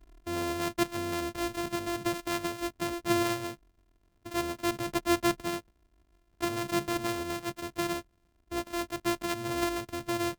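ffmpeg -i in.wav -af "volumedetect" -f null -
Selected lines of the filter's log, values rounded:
mean_volume: -33.1 dB
max_volume: -16.4 dB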